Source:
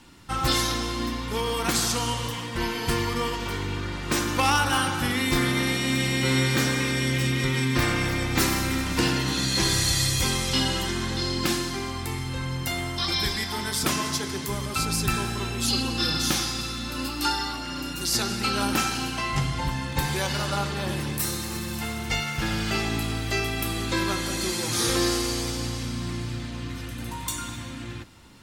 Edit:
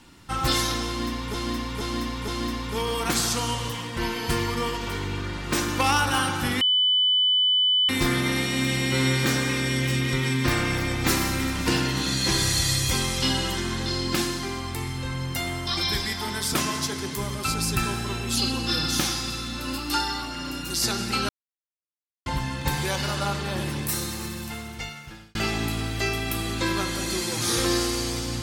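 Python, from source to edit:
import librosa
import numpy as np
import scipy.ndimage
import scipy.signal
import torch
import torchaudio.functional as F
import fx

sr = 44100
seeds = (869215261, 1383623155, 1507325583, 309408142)

y = fx.edit(x, sr, fx.repeat(start_s=0.87, length_s=0.47, count=4),
    fx.insert_tone(at_s=5.2, length_s=1.28, hz=3000.0, db=-17.5),
    fx.silence(start_s=18.6, length_s=0.97),
    fx.fade_out_span(start_s=21.39, length_s=1.27), tone=tone)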